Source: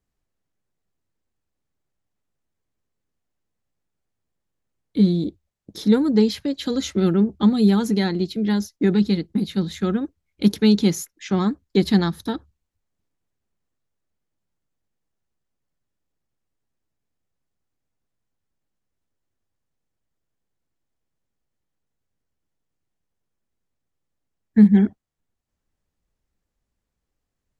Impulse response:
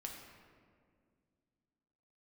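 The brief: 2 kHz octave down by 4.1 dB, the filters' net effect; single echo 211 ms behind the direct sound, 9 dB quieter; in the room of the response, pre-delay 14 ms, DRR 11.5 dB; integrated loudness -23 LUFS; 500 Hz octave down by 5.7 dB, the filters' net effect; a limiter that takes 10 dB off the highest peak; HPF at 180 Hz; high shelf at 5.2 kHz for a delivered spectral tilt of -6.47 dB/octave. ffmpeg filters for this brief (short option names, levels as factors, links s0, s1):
-filter_complex "[0:a]highpass=180,equalizer=f=500:t=o:g=-7.5,equalizer=f=2000:t=o:g=-3.5,highshelf=f=5200:g=-8,alimiter=limit=0.15:level=0:latency=1,aecho=1:1:211:0.355,asplit=2[s0][s1];[1:a]atrim=start_sample=2205,adelay=14[s2];[s1][s2]afir=irnorm=-1:irlink=0,volume=0.355[s3];[s0][s3]amix=inputs=2:normalize=0,volume=1.33"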